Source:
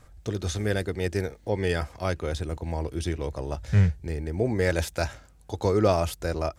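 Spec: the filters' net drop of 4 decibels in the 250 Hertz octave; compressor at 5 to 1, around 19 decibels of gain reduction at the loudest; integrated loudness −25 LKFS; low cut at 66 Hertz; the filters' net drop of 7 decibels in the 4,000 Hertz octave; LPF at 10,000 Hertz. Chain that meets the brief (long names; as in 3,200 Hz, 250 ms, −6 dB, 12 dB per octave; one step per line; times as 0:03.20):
high-pass filter 66 Hz
low-pass filter 10,000 Hz
parametric band 250 Hz −6 dB
parametric band 4,000 Hz −9 dB
downward compressor 5 to 1, threshold −39 dBFS
level +18 dB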